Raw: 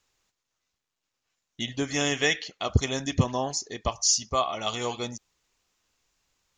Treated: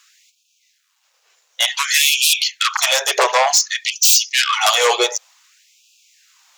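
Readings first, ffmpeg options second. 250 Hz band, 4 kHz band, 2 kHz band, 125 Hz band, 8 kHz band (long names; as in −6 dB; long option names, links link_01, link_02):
can't be measured, +15.0 dB, +13.5 dB, below −40 dB, +12.5 dB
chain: -af "aeval=exprs='0.398*sin(PI/2*7.08*val(0)/0.398)':channel_layout=same,afftfilt=real='re*gte(b*sr/1024,370*pow(2400/370,0.5+0.5*sin(2*PI*0.55*pts/sr)))':imag='im*gte(b*sr/1024,370*pow(2400/370,0.5+0.5*sin(2*PI*0.55*pts/sr)))':win_size=1024:overlap=0.75"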